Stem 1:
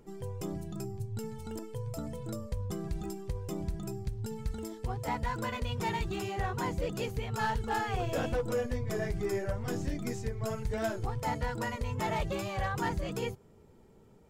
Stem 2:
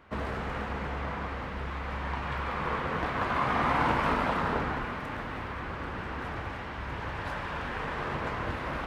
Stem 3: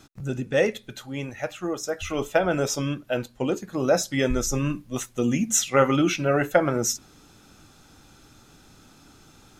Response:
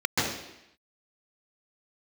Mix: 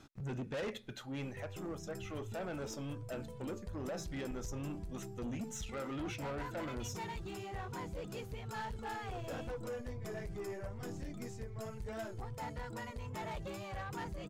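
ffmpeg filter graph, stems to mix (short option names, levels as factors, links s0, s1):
-filter_complex "[0:a]adelay=1150,volume=0.422[s0];[2:a]alimiter=limit=0.168:level=0:latency=1:release=39,highshelf=f=5100:g=-10,volume=0.562,afade=t=out:st=1.25:d=0.23:silence=0.421697[s1];[s0][s1]amix=inputs=2:normalize=0,asoftclip=type=tanh:threshold=0.0158"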